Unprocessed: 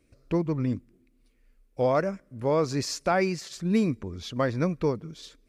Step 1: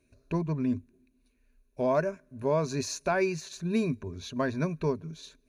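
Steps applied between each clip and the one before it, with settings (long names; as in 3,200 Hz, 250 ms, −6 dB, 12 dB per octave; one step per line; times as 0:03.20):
EQ curve with evenly spaced ripples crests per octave 1.5, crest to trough 11 dB
level −4 dB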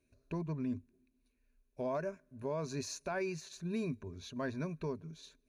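brickwall limiter −21 dBFS, peak gain reduction 6 dB
level −7.5 dB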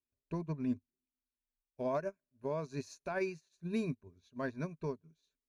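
expander for the loud parts 2.5 to 1, over −52 dBFS
level +4 dB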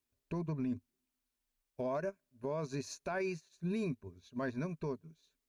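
brickwall limiter −36 dBFS, peak gain reduction 11 dB
level +7 dB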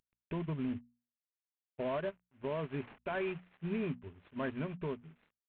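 variable-slope delta modulation 16 kbit/s
mains-hum notches 60/120/180/240 Hz
level +1 dB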